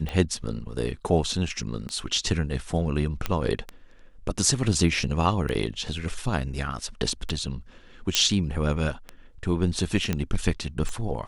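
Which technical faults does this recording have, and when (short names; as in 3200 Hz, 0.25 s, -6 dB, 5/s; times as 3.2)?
tick 33 1/3 rpm -18 dBFS
3.26 pop -11 dBFS
8.15 pop -4 dBFS
10.13 pop -12 dBFS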